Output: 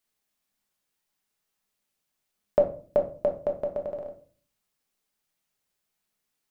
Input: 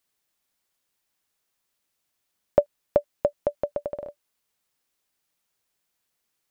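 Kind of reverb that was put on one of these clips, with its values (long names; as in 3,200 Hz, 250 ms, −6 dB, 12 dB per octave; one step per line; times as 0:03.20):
rectangular room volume 330 cubic metres, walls furnished, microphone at 1.4 metres
level −4.5 dB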